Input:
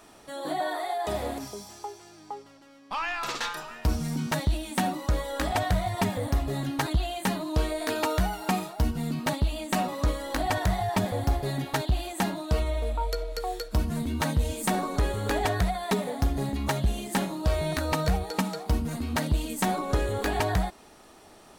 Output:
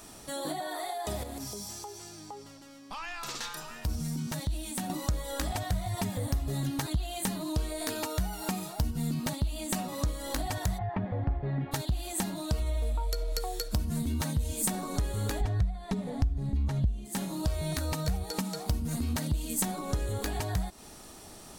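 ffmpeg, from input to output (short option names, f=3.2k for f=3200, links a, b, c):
-filter_complex "[0:a]asettb=1/sr,asplit=3[a][b][c];[a]atrim=end=1.234[d];[b]atrim=start=1.23:end=4.9,asetpts=PTS-STARTPTS,afade=t=in:d=0.004:c=qsin,afade=t=out:st=3.666:d=0.004:c=qsin,acompressor=threshold=-44dB:ratio=2:attack=3.2:release=140:knee=1:detection=peak[e];[c]atrim=start=4.896[f];[d][e]acrossfade=d=0.004:c1=hsin:c2=qsin[g];[g][f]acrossfade=d=0.004:c1=qsin:c2=hsin,asplit=3[h][i][j];[h]afade=t=out:st=10.77:d=0.02[k];[i]lowpass=f=2.2k:w=0.5412,lowpass=f=2.2k:w=1.3066,afade=t=in:st=10.77:d=0.02,afade=t=out:st=11.71:d=0.02[l];[j]afade=t=in:st=11.71:d=0.02[m];[k][l][m]amix=inputs=3:normalize=0,asplit=3[n][o][p];[n]afade=t=out:st=15.4:d=0.02[q];[o]aemphasis=mode=reproduction:type=bsi,afade=t=in:st=15.4:d=0.02,afade=t=out:st=17.04:d=0.02[r];[p]afade=t=in:st=17.04:d=0.02[s];[q][r][s]amix=inputs=3:normalize=0,acompressor=threshold=-33dB:ratio=10,bass=f=250:g=8,treble=f=4k:g=10"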